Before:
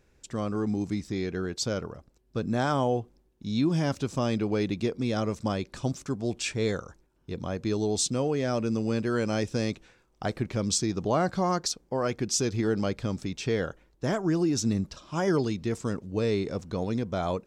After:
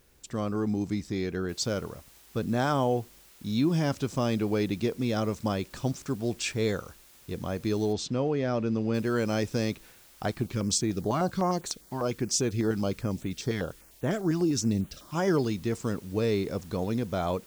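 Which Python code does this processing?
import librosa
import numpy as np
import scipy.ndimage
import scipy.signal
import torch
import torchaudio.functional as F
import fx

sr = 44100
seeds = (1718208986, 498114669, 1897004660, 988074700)

y = fx.noise_floor_step(x, sr, seeds[0], at_s=1.49, before_db=-67, after_db=-56, tilt_db=0.0)
y = fx.air_absorb(y, sr, metres=150.0, at=(7.92, 8.93), fade=0.02)
y = fx.filter_held_notch(y, sr, hz=10.0, low_hz=500.0, high_hz=5100.0, at=(10.31, 15.15))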